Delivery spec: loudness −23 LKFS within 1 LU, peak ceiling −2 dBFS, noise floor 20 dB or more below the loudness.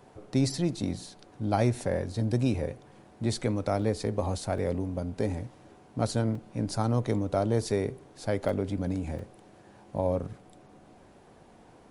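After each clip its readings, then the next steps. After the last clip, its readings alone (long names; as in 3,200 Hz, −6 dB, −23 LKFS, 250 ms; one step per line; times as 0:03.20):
number of dropouts 5; longest dropout 3.1 ms; integrated loudness −30.5 LKFS; sample peak −12.0 dBFS; target loudness −23.0 LKFS
→ repair the gap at 0:03.82/0:04.58/0:06.35/0:08.49/0:09.19, 3.1 ms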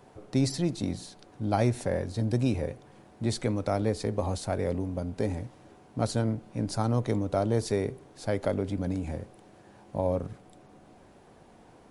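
number of dropouts 0; integrated loudness −30.5 LKFS; sample peak −12.0 dBFS; target loudness −23.0 LKFS
→ level +7.5 dB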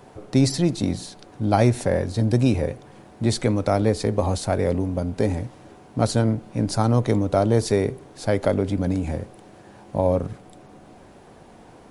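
integrated loudness −23.0 LKFS; sample peak −4.5 dBFS; background noise floor −48 dBFS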